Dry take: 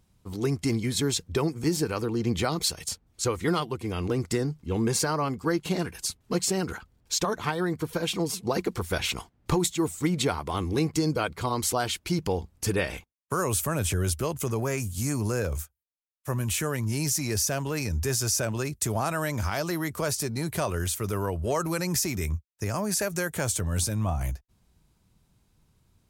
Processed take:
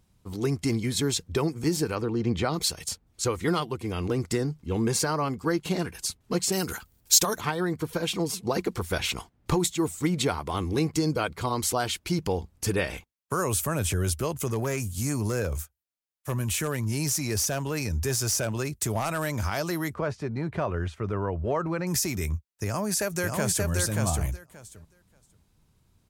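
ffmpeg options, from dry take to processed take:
ffmpeg -i in.wav -filter_complex "[0:a]asettb=1/sr,asplit=3[link_01][link_02][link_03];[link_01]atrim=end=1.954[link_04];[link_02]atrim=start=1.95:end=2.54,asetpts=PTS-STARTPTS,afade=type=in:duration=0.004:curve=qsin,afade=type=out:start_time=0.586:duration=0.004:curve=qsin,aemphasis=mode=reproduction:type=50fm[link_05];[link_03]atrim=start=2.536[link_06];[link_04][link_05]acrossfade=duration=0.004:curve1=hsin:curve2=qsin[link_07];[link_07][link_06]acrossfade=duration=0.004:curve1=qsin:curve2=hsin,asettb=1/sr,asplit=3[link_08][link_09][link_10];[link_08]atrim=end=6.524[link_11];[link_09]atrim=start=6.52:end=7.41,asetpts=PTS-STARTPTS,afade=type=in:duration=0.004:curve=qsin,afade=type=out:start_time=0.886:duration=0.004:curve=qsin,aemphasis=mode=production:type=75fm[link_12];[link_10]atrim=start=7.406[link_13];[link_11][link_12]acrossfade=duration=0.004:curve1=hsin:curve2=qsin[link_14];[link_14][link_13]acrossfade=duration=0.004:curve1=qsin:curve2=hsin,asettb=1/sr,asplit=3[link_15][link_16][link_17];[link_15]atrim=end=14.474[link_18];[link_16]atrim=start=14.47:end=19.38,asetpts=PTS-STARTPTS,afade=type=in:duration=0.004:curve=qsin,afade=type=out:start_time=4.906:duration=0.004:curve=qsin,aeval=exprs='0.112*(abs(mod(val(0)/0.112+3,4)-2)-1)':channel_layout=same[link_19];[link_17]atrim=start=19.376[link_20];[link_18][link_19]acrossfade=duration=0.004:curve1=hsin:curve2=qsin[link_21];[link_21][link_20]acrossfade=duration=0.004:curve1=qsin:curve2=hsin,asettb=1/sr,asplit=3[link_22][link_23][link_24];[link_22]atrim=end=19.944[link_25];[link_23]atrim=start=19.94:end=21.87,asetpts=PTS-STARTPTS,afade=type=in:duration=0.004:curve=qsin,afade=type=out:start_time=1.926:duration=0.004:curve=qsin,lowpass=2000[link_26];[link_24]atrim=start=21.866[link_27];[link_25][link_26]acrossfade=duration=0.004:curve1=hsin:curve2=qsin[link_28];[link_28][link_27]acrossfade=duration=0.004:curve1=qsin:curve2=hsin,asplit=2[link_29][link_30];[link_30]afade=type=in:start_time=22.65:duration=0.01,afade=type=out:start_time=23.68:duration=0.01,aecho=0:1:580|1160|1740:0.707946|0.106192|0.0159288[link_31];[link_29][link_31]amix=inputs=2:normalize=0" out.wav

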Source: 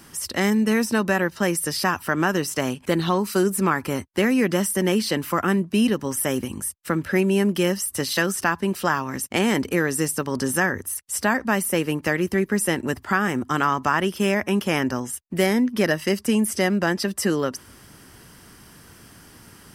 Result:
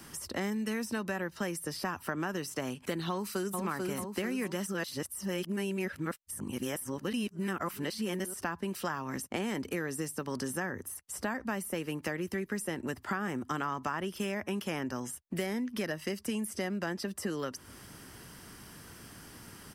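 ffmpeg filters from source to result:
ffmpeg -i in.wav -filter_complex "[0:a]asplit=2[link_01][link_02];[link_02]afade=type=in:start_time=3.09:duration=0.01,afade=type=out:start_time=3.6:duration=0.01,aecho=0:1:440|880|1320|1760|2200|2640|3080:0.668344|0.334172|0.167086|0.083543|0.0417715|0.0208857|0.0104429[link_03];[link_01][link_03]amix=inputs=2:normalize=0,asplit=3[link_04][link_05][link_06];[link_04]atrim=end=4.672[link_07];[link_05]atrim=start=4.668:end=8.342,asetpts=PTS-STARTPTS,areverse[link_08];[link_06]atrim=start=8.338[link_09];[link_07][link_08]acrossfade=duration=0.004:curve1=hsin:curve2=hsin[link_10];[link_10][link_09]acrossfade=duration=0.004:curve1=hsin:curve2=hsin,acrossover=split=110|1300[link_11][link_12][link_13];[link_11]acompressor=threshold=-54dB:ratio=4[link_14];[link_12]acompressor=threshold=-32dB:ratio=4[link_15];[link_13]acompressor=threshold=-39dB:ratio=4[link_16];[link_14][link_15][link_16]amix=inputs=3:normalize=0,volume=-2.5dB" out.wav

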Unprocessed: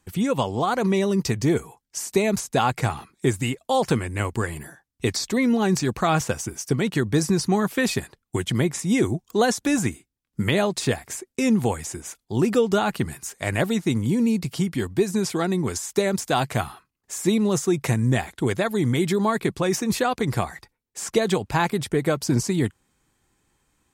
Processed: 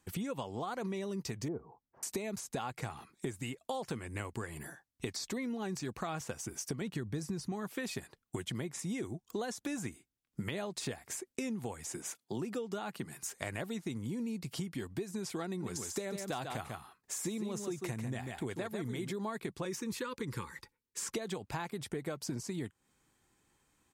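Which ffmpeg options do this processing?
ffmpeg -i in.wav -filter_complex "[0:a]asettb=1/sr,asplit=3[link_01][link_02][link_03];[link_01]atrim=end=1.484[link_04];[link_02]atrim=start=1.48:end=2.03,asetpts=PTS-STARTPTS,afade=type=in:duration=0.004:curve=qsin,afade=type=out:start_time=0.546:duration=0.004:curve=qsin,lowpass=frequency=1100:width=0.5412,lowpass=frequency=1100:width=1.3066[link_05];[link_03]atrim=start=2.026[link_06];[link_04][link_05]acrossfade=duration=0.004:curve1=hsin:curve2=qsin[link_07];[link_07][link_06]acrossfade=duration=0.004:curve1=qsin:curve2=hsin,asettb=1/sr,asplit=3[link_08][link_09][link_10];[link_08]atrim=end=6.814[link_11];[link_09]atrim=start=6.81:end=7.52,asetpts=PTS-STARTPTS,afade=type=in:duration=0.004:curve=qsin,afade=type=out:start_time=0.706:duration=0.004:curve=qsin,lowshelf=frequency=180:gain=9.5[link_12];[link_10]atrim=start=7.516[link_13];[link_11][link_12]acrossfade=duration=0.004:curve1=hsin:curve2=qsin[link_14];[link_14][link_13]acrossfade=duration=0.004:curve1=qsin:curve2=hsin,asettb=1/sr,asplit=3[link_15][link_16][link_17];[link_15]atrim=end=11.914[link_18];[link_16]atrim=start=11.91:end=13.23,asetpts=PTS-STARTPTS,afade=type=in:duration=0.004:curve=qsin,afade=type=out:start_time=1.316:duration=0.004:curve=qsin,highpass=frequency=120:width=0.5412,highpass=frequency=120:width=1.3066[link_19];[link_17]atrim=start=13.226[link_20];[link_18][link_19]acrossfade=duration=0.004:curve1=hsin:curve2=qsin[link_21];[link_21][link_20]acrossfade=duration=0.004:curve1=qsin:curve2=hsin,asplit=3[link_22][link_23][link_24];[link_22]afade=type=out:start_time=15.6:duration=0.02[link_25];[link_23]aecho=1:1:144:0.447,afade=type=in:start_time=15.6:duration=0.02,afade=type=out:start_time=19.1:duration=0.02[link_26];[link_24]afade=type=in:start_time=19.1:duration=0.02[link_27];[link_25][link_26][link_27]amix=inputs=3:normalize=0,asettb=1/sr,asplit=3[link_28][link_29][link_30];[link_28]atrim=end=19.654[link_31];[link_29]atrim=start=19.65:end=21.15,asetpts=PTS-STARTPTS,afade=type=in:duration=0.004:curve=qsin,afade=type=out:start_time=1.496:duration=0.004:curve=qsin,asuperstop=centerf=680:order=20:qfactor=2.3[link_32];[link_30]atrim=start=21.146[link_33];[link_31][link_32]acrossfade=duration=0.004:curve1=hsin:curve2=qsin[link_34];[link_34][link_33]acrossfade=duration=0.004:curve1=qsin:curve2=hsin,lowshelf=frequency=80:gain=-7,acompressor=threshold=-32dB:ratio=6,volume=-4dB" out.wav

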